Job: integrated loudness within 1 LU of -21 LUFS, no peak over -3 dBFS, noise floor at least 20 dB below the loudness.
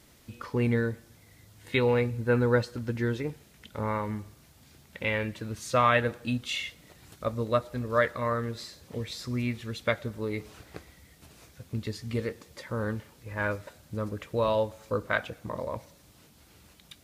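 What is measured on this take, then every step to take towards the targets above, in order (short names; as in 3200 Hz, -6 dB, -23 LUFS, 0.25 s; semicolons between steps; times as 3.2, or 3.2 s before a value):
loudness -30.5 LUFS; peak -10.0 dBFS; loudness target -21.0 LUFS
-> gain +9.5 dB; limiter -3 dBFS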